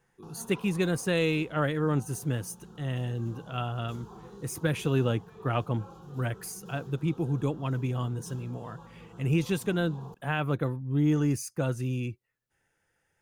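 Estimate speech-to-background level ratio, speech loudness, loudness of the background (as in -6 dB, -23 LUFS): 19.0 dB, -30.5 LUFS, -49.5 LUFS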